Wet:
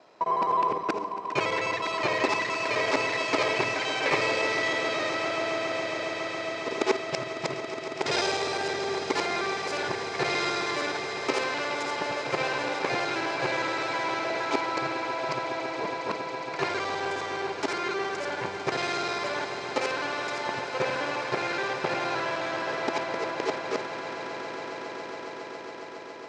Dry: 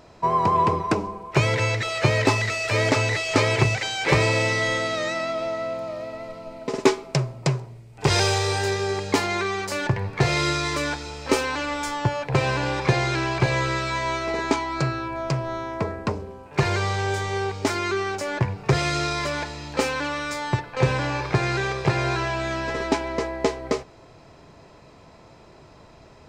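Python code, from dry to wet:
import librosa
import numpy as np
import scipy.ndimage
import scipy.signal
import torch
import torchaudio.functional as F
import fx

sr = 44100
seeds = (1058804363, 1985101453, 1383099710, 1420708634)

y = fx.local_reverse(x, sr, ms=52.0)
y = fx.bandpass_edges(y, sr, low_hz=340.0, high_hz=5700.0)
y = fx.echo_swell(y, sr, ms=138, loudest=8, wet_db=-14.5)
y = y * 10.0 ** (-4.0 / 20.0)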